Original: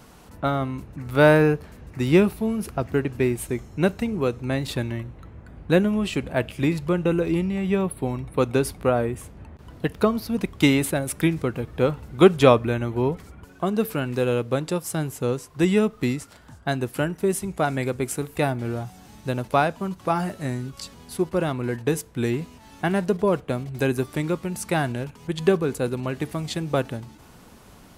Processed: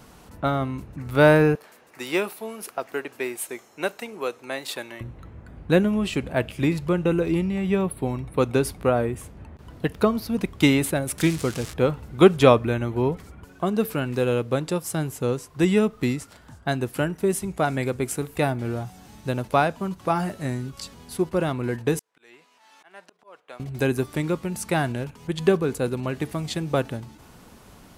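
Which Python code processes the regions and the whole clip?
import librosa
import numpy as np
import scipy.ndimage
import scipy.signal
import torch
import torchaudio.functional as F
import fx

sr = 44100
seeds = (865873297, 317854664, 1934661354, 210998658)

y = fx.chain(x, sr, fx.highpass(hz=540.0, slope=12),
    fx.high_shelf(hz=9300.0, db=5.0), at=(1.55, 5.01))
y = fx.chain(y, sr, fx.crossing_spikes(level_db=-18.5),
    fx.lowpass(hz=8500.0, slope=12), at=(11.18, 11.74))
y = fx.chain(y, sr, fx.highpass(hz=800.0, slope=12),
    fx.high_shelf(hz=8800.0, db=-12.0),
    fx.auto_swell(attack_ms=668.0), at=(21.99, 23.6))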